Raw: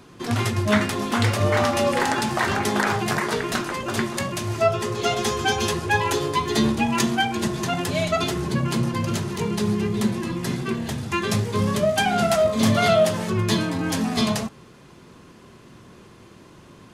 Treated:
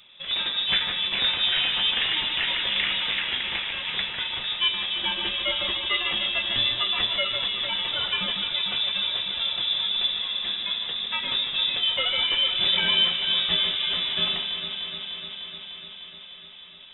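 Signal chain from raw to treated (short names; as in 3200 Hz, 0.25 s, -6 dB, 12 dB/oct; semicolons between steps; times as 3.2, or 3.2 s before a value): inverted band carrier 3700 Hz; echo with dull and thin repeats by turns 0.15 s, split 2300 Hz, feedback 87%, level -6.5 dB; gain -5 dB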